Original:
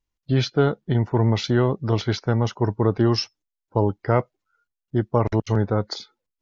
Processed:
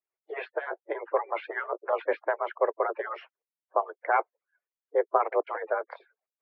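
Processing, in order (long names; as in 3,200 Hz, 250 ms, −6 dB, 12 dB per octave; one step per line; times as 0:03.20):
harmonic-percussive split with one part muted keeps percussive
single-sideband voice off tune +160 Hz 240–2,200 Hz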